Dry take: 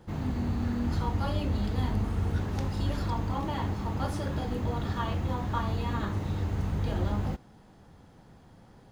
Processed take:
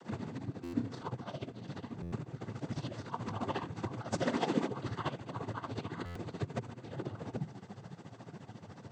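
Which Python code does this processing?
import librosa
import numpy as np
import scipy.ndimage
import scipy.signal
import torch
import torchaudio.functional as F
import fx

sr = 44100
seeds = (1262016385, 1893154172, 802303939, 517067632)

y = fx.octave_divider(x, sr, octaves=1, level_db=1.0)
y = fx.cheby1_highpass(y, sr, hz=170.0, order=5, at=(4.2, 4.67), fade=0.02)
y = fx.hum_notches(y, sr, base_hz=50, count=5)
y = fx.over_compress(y, sr, threshold_db=-35.0, ratio=-1.0)
y = fx.noise_vocoder(y, sr, seeds[0], bands=16)
y = y * (1.0 - 0.75 / 2.0 + 0.75 / 2.0 * np.cos(2.0 * np.pi * 14.0 * (np.arange(len(y)) / sr)))
y = fx.room_flutter(y, sr, wall_m=5.1, rt60_s=0.22, at=(0.6, 1.02))
y = fx.buffer_glitch(y, sr, at_s=(0.63, 2.02, 6.05), block=512, repeats=8)
y = y * librosa.db_to_amplitude(2.5)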